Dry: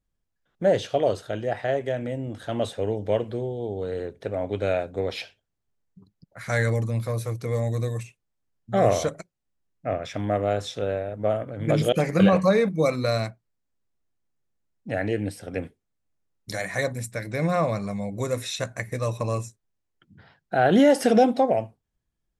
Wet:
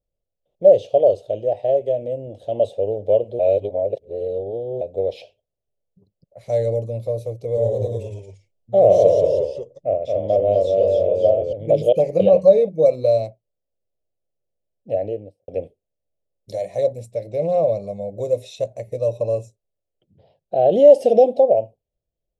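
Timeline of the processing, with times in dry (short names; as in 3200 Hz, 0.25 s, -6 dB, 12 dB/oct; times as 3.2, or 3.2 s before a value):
3.39–4.81 reverse
7.49–11.53 echoes that change speed 81 ms, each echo -1 st, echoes 3
14.92–15.48 studio fade out
16.79–17.62 Doppler distortion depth 0.12 ms
whole clip: EQ curve 110 Hz 0 dB, 270 Hz -5 dB, 580 Hz +14 dB, 1500 Hz -29 dB, 2700 Hz -4 dB, 8800 Hz -9 dB; gain -3 dB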